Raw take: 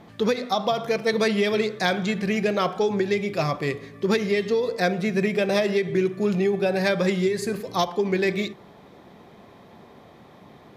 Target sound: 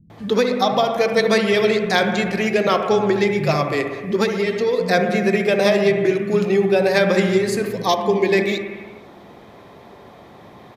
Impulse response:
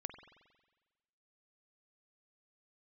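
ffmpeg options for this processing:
-filter_complex "[0:a]asettb=1/sr,asplit=3[s0][s1][s2];[s0]atrim=end=4.134[s3];[s1]atrim=start=4.13:end=4.57,asetpts=PTS-STARTPTS,afade=t=in:d=0.004:c=qsin,afade=t=out:st=0.436:d=0.004:c=qsin,acompressor=threshold=0.0708:ratio=3[s4];[s2]atrim=start=4.566[s5];[s3][s4]acrossfade=d=0.004:c1=hsin:c2=qsin[s6];[s6][s5]acrossfade=d=0.004:c1=qsin:c2=hsin,asettb=1/sr,asplit=3[s7][s8][s9];[s7]atrim=end=7.634[s10];[s8]atrim=start=7.63:end=8.24,asetpts=PTS-STARTPTS,afade=t=in:d=0.004:c=qsin,afade=t=out:st=0.606:d=0.004:c=qsin,asuperstop=centerf=1400:order=4:qfactor=3[s11];[s9]atrim=start=8.236[s12];[s10][s11]acrossfade=d=0.004:c1=hsin:c2=qsin[s13];[s13][s12]acrossfade=d=0.004:c1=qsin:c2=hsin,acrossover=split=190[s14][s15];[s15]adelay=100[s16];[s14][s16]amix=inputs=2:normalize=0[s17];[1:a]atrim=start_sample=2205,afade=t=out:st=0.42:d=0.01,atrim=end_sample=18963,asetrate=33075,aresample=44100[s18];[s17][s18]afir=irnorm=-1:irlink=0,volume=2.37"

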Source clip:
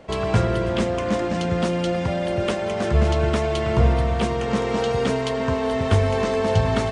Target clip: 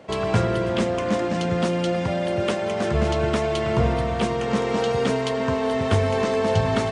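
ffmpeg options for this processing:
-af "highpass=97"

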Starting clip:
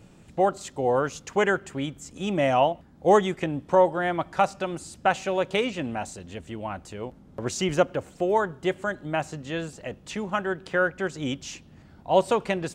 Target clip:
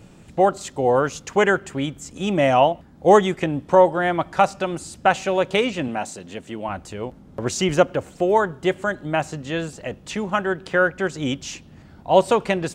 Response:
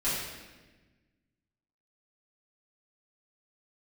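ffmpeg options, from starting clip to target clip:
-filter_complex "[0:a]asettb=1/sr,asplit=3[s0][s1][s2];[s0]atrim=end=5.884[s3];[s1]atrim=start=5.88:end=6.69,asetpts=PTS-STARTPTS,afade=t=in:d=0.004:c=qsin,afade=t=out:st=0.806:d=0.004:c=qsin,highpass=160[s4];[s2]atrim=start=6.686[s5];[s3][s4]acrossfade=d=0.004:c1=hsin:c2=qsin[s6];[s6][s5]acrossfade=d=0.004:c1=qsin:c2=hsin,volume=1.78"

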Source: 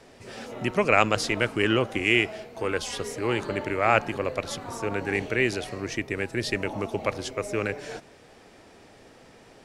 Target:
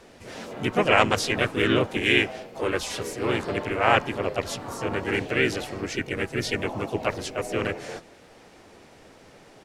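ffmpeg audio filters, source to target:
-filter_complex "[0:a]asplit=3[s0][s1][s2];[s1]asetrate=35002,aresample=44100,atempo=1.25992,volume=0.501[s3];[s2]asetrate=52444,aresample=44100,atempo=0.840896,volume=0.631[s4];[s0][s3][s4]amix=inputs=3:normalize=0,volume=0.891"

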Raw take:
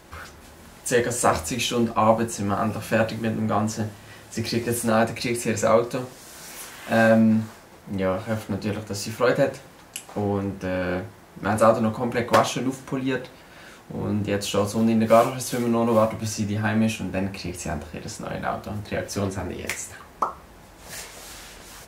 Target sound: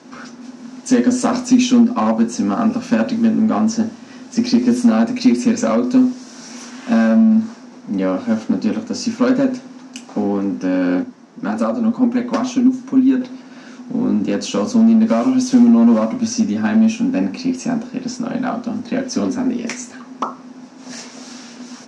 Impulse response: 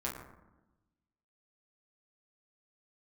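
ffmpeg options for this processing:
-filter_complex "[0:a]equalizer=f=250:t=o:w=0.27:g=14.5,acompressor=threshold=0.158:ratio=6,asettb=1/sr,asplit=3[s0][s1][s2];[s0]atrim=end=11.034[s3];[s1]atrim=start=11.03:end=13.21,asetpts=PTS-STARTPTS,afade=t=in:d=0.004:c=qsin,afade=t=out:st=2.176:d=0.004:c=qsin,flanger=delay=2.3:depth=8.9:regen=38:speed=1.9:shape=triangular[s4];[s2]atrim=start=13.206[s5];[s3][s4]acrossfade=d=0.004:c1=hsin:c2=qsin[s6];[s6][s5]acrossfade=d=0.004:c1=qsin:c2=hsin,asoftclip=type=hard:threshold=0.158,highpass=f=160:w=0.5412,highpass=f=160:w=1.3066,equalizer=f=250:t=q:w=4:g=9,equalizer=f=2000:t=q:w=4:g=-4,equalizer=f=3300:t=q:w=4:g=-4,equalizer=f=5700:t=q:w=4:g=7,lowpass=f=6700:w=0.5412,lowpass=f=6700:w=1.3066,volume=1.5"

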